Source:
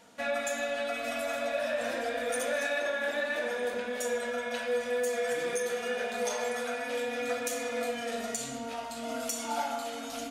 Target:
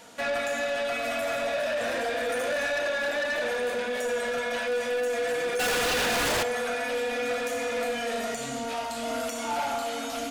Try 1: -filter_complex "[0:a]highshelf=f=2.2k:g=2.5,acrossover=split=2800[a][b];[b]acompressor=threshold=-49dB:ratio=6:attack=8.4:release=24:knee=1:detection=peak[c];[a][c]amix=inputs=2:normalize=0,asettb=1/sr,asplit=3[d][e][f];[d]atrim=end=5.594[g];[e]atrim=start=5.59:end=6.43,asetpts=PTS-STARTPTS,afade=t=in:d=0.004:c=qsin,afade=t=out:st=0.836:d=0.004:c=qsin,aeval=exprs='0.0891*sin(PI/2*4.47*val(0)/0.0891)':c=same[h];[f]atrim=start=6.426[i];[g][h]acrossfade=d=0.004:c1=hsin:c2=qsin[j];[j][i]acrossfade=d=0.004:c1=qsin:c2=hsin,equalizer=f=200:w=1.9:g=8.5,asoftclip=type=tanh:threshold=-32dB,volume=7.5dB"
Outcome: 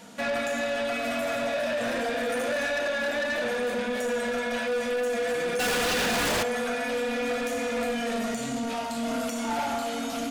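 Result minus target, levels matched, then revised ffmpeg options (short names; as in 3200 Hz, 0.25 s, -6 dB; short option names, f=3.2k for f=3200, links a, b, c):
250 Hz band +6.0 dB
-filter_complex "[0:a]highshelf=f=2.2k:g=2.5,acrossover=split=2800[a][b];[b]acompressor=threshold=-49dB:ratio=6:attack=8.4:release=24:knee=1:detection=peak[c];[a][c]amix=inputs=2:normalize=0,asettb=1/sr,asplit=3[d][e][f];[d]atrim=end=5.594[g];[e]atrim=start=5.59:end=6.43,asetpts=PTS-STARTPTS,afade=t=in:d=0.004:c=qsin,afade=t=out:st=0.836:d=0.004:c=qsin,aeval=exprs='0.0891*sin(PI/2*4.47*val(0)/0.0891)':c=same[h];[f]atrim=start=6.426[i];[g][h]acrossfade=d=0.004:c1=hsin:c2=qsin[j];[j][i]acrossfade=d=0.004:c1=qsin:c2=hsin,equalizer=f=200:w=1.9:g=-3.5,asoftclip=type=tanh:threshold=-32dB,volume=7.5dB"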